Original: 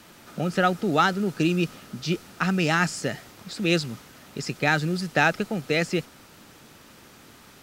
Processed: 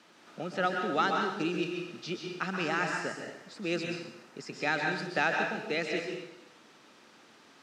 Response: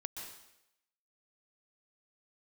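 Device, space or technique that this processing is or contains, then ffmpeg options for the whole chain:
supermarket ceiling speaker: -filter_complex "[0:a]highpass=250,lowpass=5.8k[a];[1:a]atrim=start_sample=2205[b];[a][b]afir=irnorm=-1:irlink=0,asettb=1/sr,asplit=3[c][d][e];[c]atrim=end=2.684[f];[d]atrim=start=2.68:end=4.54,asetpts=PTS-STARTPTS,afade=t=in:d=0.004:c=qsin,afade=t=out:st=1.856:d=0.004:c=qsin,equalizer=f=3.6k:w=1.5:g=-6[g];[e]atrim=start=4.536[h];[f][g]acrossfade=d=0.004:c1=hsin:c2=qsin[i];[i][h]acrossfade=d=0.004:c1=qsin:c2=hsin,volume=-4dB"

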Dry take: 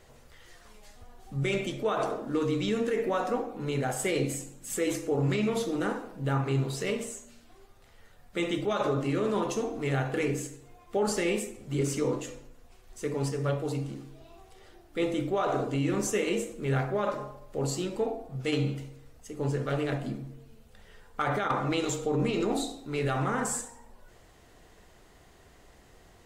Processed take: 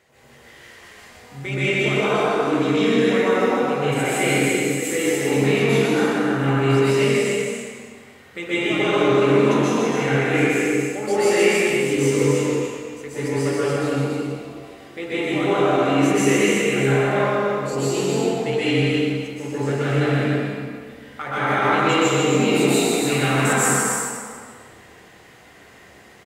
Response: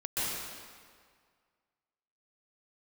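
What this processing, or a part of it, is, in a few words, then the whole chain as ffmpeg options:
stadium PA: -filter_complex "[0:a]asettb=1/sr,asplit=3[a][b][c];[a]atrim=end=22.324[d];[b]atrim=start=22.32:end=23.53,asetpts=PTS-STARTPTS,afade=t=in:d=0.004:c=qsin,afade=t=out:st=1.206:d=0.004:c=qsin,aemphasis=mode=production:type=50kf[e];[c]atrim=start=23.526[f];[d][e]acrossfade=d=0.004:c1=hsin:c2=qsin[g];[g][f]acrossfade=d=0.004:c1=qsin:c2=hsin,highpass=120,equalizer=f=2.1k:t=o:w=0.87:g=7,aecho=1:1:157.4|279.9:0.562|0.562[h];[1:a]atrim=start_sample=2205[i];[h][i]afir=irnorm=-1:irlink=0"

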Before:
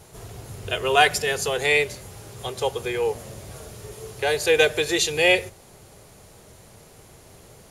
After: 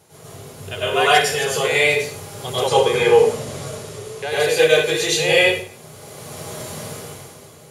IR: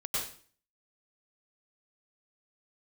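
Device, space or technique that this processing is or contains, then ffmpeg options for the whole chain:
far laptop microphone: -filter_complex "[1:a]atrim=start_sample=2205[a];[0:a][a]afir=irnorm=-1:irlink=0,highpass=120,dynaudnorm=f=110:g=13:m=15dB,asettb=1/sr,asplit=3[b][c][d];[b]atrim=end=2.684[e];[c]atrim=start=2.68:end=4.32,asetpts=PTS-STARTPTS,afade=t=in:d=0.004:c=qsin,afade=t=out:st=1.636:d=0.004:c=qsin,lowpass=10k[f];[d]atrim=start=4.316[g];[e][f]acrossfade=d=0.004:c1=hsin:c2=qsin[h];[h][g]acrossfade=d=0.004:c1=qsin:c2=hsin,volume=-1dB"

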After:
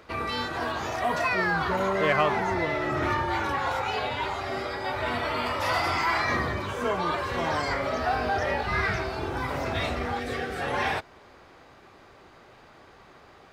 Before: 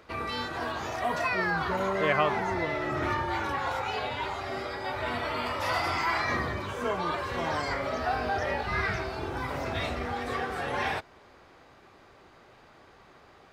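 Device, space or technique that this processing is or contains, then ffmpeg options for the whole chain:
parallel distortion: -filter_complex "[0:a]asettb=1/sr,asplit=3[a][b][c];[a]atrim=end=10.194[d];[b]atrim=start=10.19:end=10.61,asetpts=PTS-STARTPTS,afade=t=in:d=0.004:c=qsin,afade=t=out:st=0.416:d=0.004:c=qsin,equalizer=f=1k:t=o:w=0.5:g=-15[e];[c]atrim=start=10.606[f];[d][e]acrossfade=d=0.004:c1=hsin:c2=qsin[g];[g][f]acrossfade=d=0.004:c1=qsin:c2=hsin,asplit=2[h][i];[i]asoftclip=type=hard:threshold=-24.5dB,volume=-7.5dB[j];[h][j]amix=inputs=2:normalize=0"

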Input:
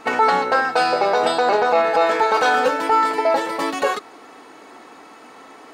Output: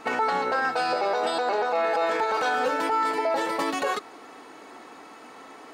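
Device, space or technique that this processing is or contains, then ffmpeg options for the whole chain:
clipper into limiter: -filter_complex "[0:a]asoftclip=type=hard:threshold=-7.5dB,alimiter=limit=-14dB:level=0:latency=1:release=65,asettb=1/sr,asplit=3[a][b][c];[a]atrim=end=0.954[d];[b]atrim=start=0.95:end=2.02,asetpts=PTS-STARTPTS,afade=t=in:d=0.004:c=qsin,afade=t=out:st=1.066:d=0.004:c=qsin,highpass=220[e];[c]atrim=start=2.016[f];[d][e]acrossfade=d=0.004:c1=hsin:c2=qsin[g];[g][f]acrossfade=d=0.004:c1=qsin:c2=hsin,volume=-2.5dB"

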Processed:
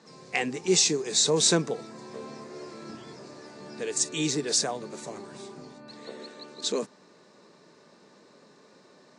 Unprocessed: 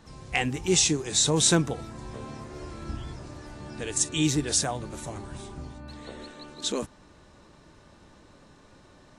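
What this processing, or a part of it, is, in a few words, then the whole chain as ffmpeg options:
television speaker: -af "highpass=f=180:w=0.5412,highpass=f=180:w=1.3066,equalizer=f=300:t=q:w=4:g=-5,equalizer=f=430:t=q:w=4:g=6,equalizer=f=820:t=q:w=4:g=-3,equalizer=f=1.4k:t=q:w=4:g=-3,equalizer=f=3.1k:t=q:w=4:g=-6,equalizer=f=4.6k:t=q:w=4:g=5,lowpass=f=8.3k:w=0.5412,lowpass=f=8.3k:w=1.3066"

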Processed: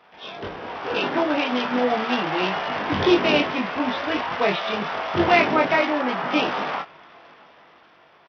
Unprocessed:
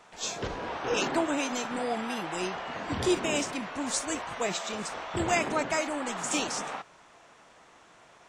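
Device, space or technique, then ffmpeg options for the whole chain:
Bluetooth headset: -filter_complex "[0:a]asettb=1/sr,asplit=3[a][b][c];[a]atrim=end=6.014[d];[b]atrim=start=6.01:end=6.46,asetpts=PTS-STARTPTS,afade=t=in:d=0.004:c=qsin,afade=t=out:st=0.446:d=0.004:c=qsin,lowpass=3k[e];[c]atrim=start=6.456[f];[d][e]acrossfade=d=0.004:c1=hsin:c2=qsin[g];[g][f]acrossfade=d=0.004:c1=qsin:c2=hsin,highpass=f=140:p=1,aecho=1:1:20|32:0.668|0.355,dynaudnorm=f=380:g=7:m=9dB,aresample=8000,aresample=44100" -ar 44100 -c:a sbc -b:a 64k

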